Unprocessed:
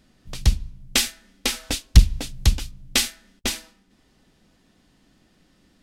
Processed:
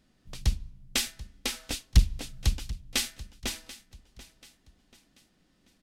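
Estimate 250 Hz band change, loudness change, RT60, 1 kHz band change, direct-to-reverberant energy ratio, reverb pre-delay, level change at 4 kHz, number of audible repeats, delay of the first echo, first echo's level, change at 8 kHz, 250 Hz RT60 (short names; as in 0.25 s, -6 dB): -8.0 dB, -8.0 dB, none, -8.0 dB, none, none, -8.0 dB, 3, 0.736 s, -17.5 dB, -8.0 dB, none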